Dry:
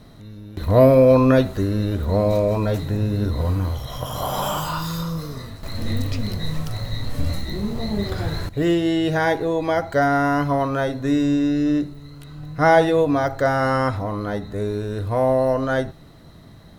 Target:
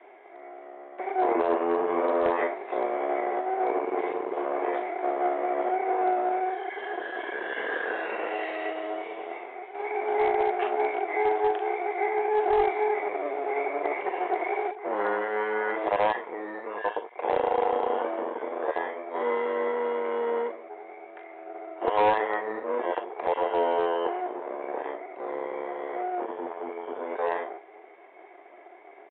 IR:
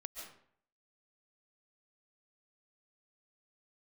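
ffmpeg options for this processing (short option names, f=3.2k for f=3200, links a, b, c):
-filter_complex "[0:a]asetrate=25442,aresample=44100,afreqshift=-380,asetrate=49501,aresample=44100,atempo=0.890899,acrossover=split=1700[a][b];[a]aeval=exprs='max(val(0),0)':c=same[c];[b]asplit=2[d][e];[e]adelay=40,volume=-4dB[f];[d][f]amix=inputs=2:normalize=0[g];[c][g]amix=inputs=2:normalize=0,highpass=f=440:w=0.5412,highpass=f=440:w=1.3066,equalizer=f=440:t=q:w=4:g=7,equalizer=f=730:t=q:w=4:g=7,equalizer=f=1k:t=q:w=4:g=9,equalizer=f=1.7k:t=q:w=4:g=5,equalizer=f=2.9k:t=q:w=4:g=-4,lowpass=f=2.9k:w=0.5412,lowpass=f=2.9k:w=1.3066,aresample=8000,asoftclip=type=hard:threshold=-16dB,aresample=44100"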